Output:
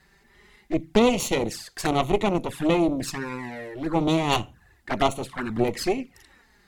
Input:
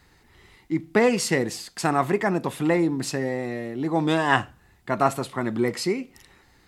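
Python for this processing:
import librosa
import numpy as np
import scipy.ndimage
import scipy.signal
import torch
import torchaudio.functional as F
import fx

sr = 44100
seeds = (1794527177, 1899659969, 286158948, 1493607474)

y = fx.cheby_harmonics(x, sr, harmonics=(5, 8), levels_db=(-33, -14), full_scale_db=-3.5)
y = fx.peak_eq(y, sr, hz=1700.0, db=5.0, octaves=0.34)
y = fx.env_flanger(y, sr, rest_ms=5.4, full_db=-19.5)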